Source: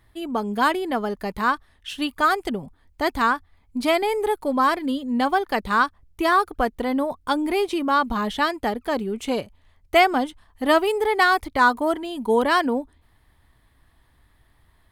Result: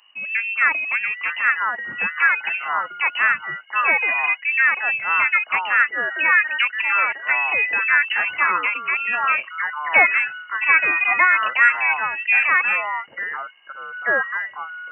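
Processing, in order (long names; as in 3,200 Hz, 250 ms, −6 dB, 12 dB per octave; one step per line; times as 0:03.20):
high-shelf EQ 2,100 Hz +7 dB
voice inversion scrambler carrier 2,900 Hz
low-shelf EQ 470 Hz −12 dB
delay with pitch and tempo change per echo 789 ms, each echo −5 semitones, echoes 2, each echo −6 dB
high-pass filter 140 Hz 12 dB per octave
level +1.5 dB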